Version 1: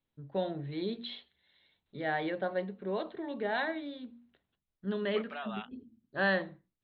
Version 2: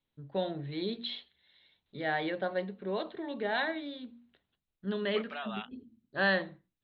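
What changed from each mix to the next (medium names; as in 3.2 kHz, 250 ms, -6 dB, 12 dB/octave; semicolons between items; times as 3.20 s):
master: add treble shelf 3.5 kHz +8.5 dB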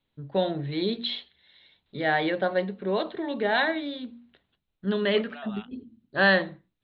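first voice +7.5 dB; second voice -3.5 dB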